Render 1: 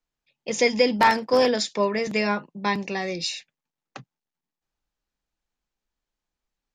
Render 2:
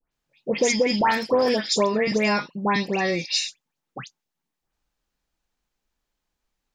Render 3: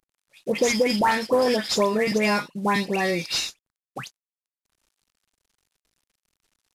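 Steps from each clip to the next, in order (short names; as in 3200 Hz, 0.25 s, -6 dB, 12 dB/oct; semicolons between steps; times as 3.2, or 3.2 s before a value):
compressor 6:1, threshold -22 dBFS, peak gain reduction 9 dB; dispersion highs, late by 0.122 s, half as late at 2100 Hz; gain +5.5 dB
CVSD 64 kbps; mismatched tape noise reduction encoder only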